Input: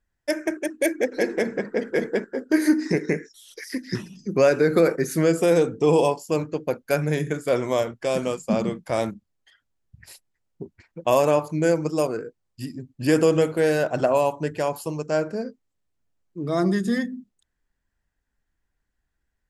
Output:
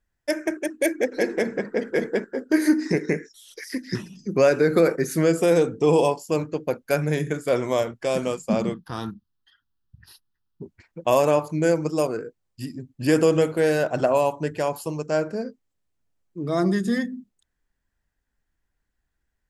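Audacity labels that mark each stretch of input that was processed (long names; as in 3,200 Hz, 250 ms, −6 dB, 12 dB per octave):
8.740000	10.630000	phaser with its sweep stopped centre 2,200 Hz, stages 6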